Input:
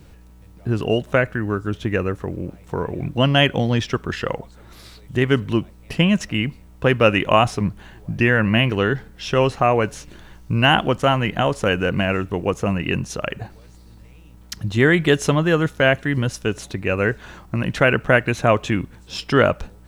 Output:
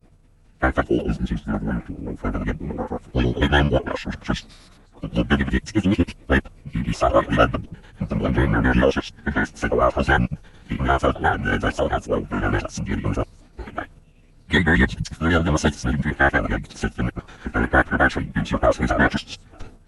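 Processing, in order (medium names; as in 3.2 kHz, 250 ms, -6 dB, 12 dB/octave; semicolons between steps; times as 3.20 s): slices played last to first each 90 ms, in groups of 7; expander -39 dBFS; formant-preserving pitch shift -11.5 st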